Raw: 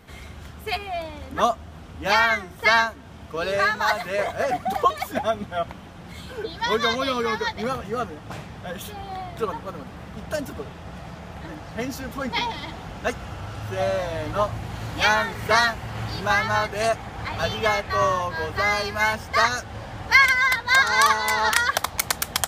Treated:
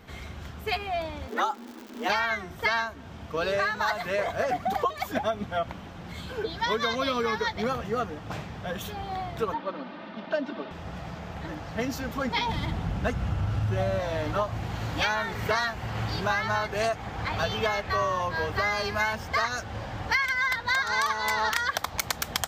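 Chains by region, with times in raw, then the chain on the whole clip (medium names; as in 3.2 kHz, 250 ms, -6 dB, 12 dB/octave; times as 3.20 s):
1.27–2.08 s: expander -38 dBFS + frequency shift +160 Hz + crackle 200 per s -33 dBFS
9.54–10.71 s: Chebyshev band-pass 190–4100 Hz, order 3 + comb 3.3 ms, depth 61%
12.48–14.00 s: CVSD coder 64 kbps + tone controls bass +10 dB, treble -3 dB
whole clip: peaking EQ 10 kHz -9 dB 0.57 oct; compression 6:1, threshold -23 dBFS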